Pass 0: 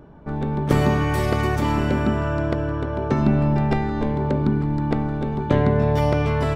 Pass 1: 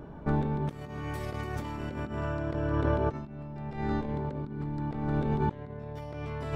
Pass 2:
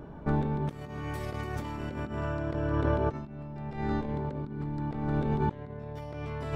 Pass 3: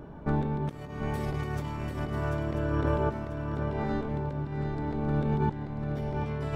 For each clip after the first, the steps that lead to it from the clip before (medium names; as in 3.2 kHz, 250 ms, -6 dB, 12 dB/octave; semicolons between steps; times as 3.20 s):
compressor with a negative ratio -26 dBFS, ratio -0.5; trim -5 dB
no audible change
shuffle delay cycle 989 ms, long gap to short 3:1, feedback 32%, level -6 dB